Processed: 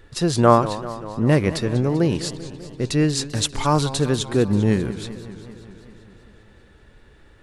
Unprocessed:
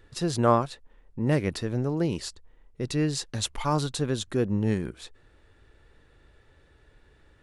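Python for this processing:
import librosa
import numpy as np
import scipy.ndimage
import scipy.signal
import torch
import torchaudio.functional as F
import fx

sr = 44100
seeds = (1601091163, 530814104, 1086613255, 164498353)

y = fx.echo_warbled(x, sr, ms=196, feedback_pct=70, rate_hz=2.8, cents=188, wet_db=-15)
y = y * librosa.db_to_amplitude(7.0)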